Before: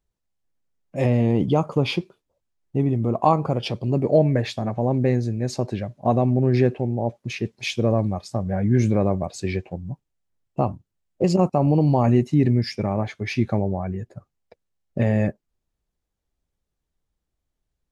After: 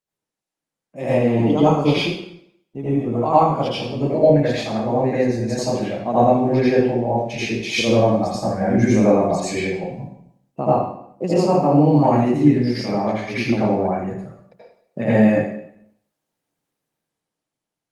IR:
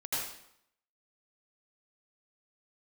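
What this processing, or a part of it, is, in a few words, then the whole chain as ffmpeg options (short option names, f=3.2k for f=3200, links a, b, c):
far-field microphone of a smart speaker: -filter_complex "[0:a]asettb=1/sr,asplit=3[a][b][c];[a]atrim=end=14.014[d];[b]atrim=start=14.01:end=15.16,asetpts=PTS-STARTPTS,afade=t=in:d=0.004:c=qsin,afade=t=out:st=1.146:d=0.004:c=qsin,highpass=f=48:p=1[e];[c]atrim=start=15.156[f];[d][e]acrossfade=d=0.004:c1=hsin:c2=qsin[g];[g][f]acrossfade=d=0.004:c1=qsin:c2=hsin[h];[1:a]atrim=start_sample=2205[i];[h][i]afir=irnorm=-1:irlink=0,highpass=f=150:w=0.5412,highpass=f=150:w=1.3066,dynaudnorm=f=120:g=17:m=6.5dB,volume=-1dB" -ar 48000 -c:a libopus -b:a 32k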